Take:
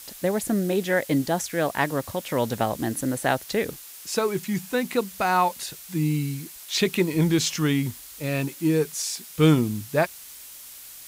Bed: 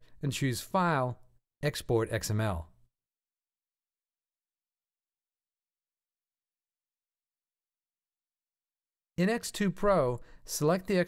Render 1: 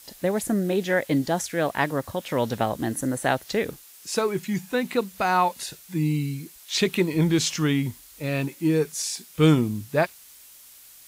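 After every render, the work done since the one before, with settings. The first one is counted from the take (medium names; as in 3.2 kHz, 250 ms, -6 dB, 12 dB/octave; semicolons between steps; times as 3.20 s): noise print and reduce 6 dB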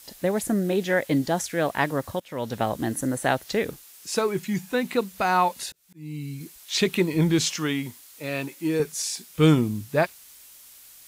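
2.20–2.69 s: fade in, from -17 dB; 5.70–6.41 s: slow attack 656 ms; 7.49–8.80 s: high-pass 340 Hz 6 dB/octave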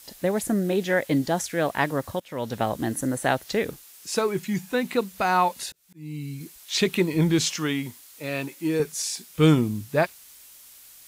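no audible change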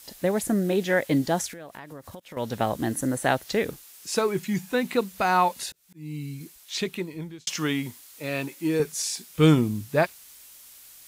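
1.51–2.37 s: compression 12:1, threshold -37 dBFS; 6.14–7.47 s: fade out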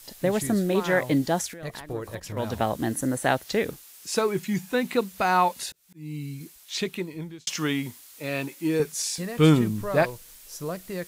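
add bed -5.5 dB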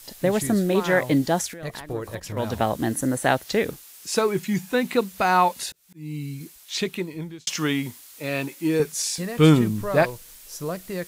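trim +2.5 dB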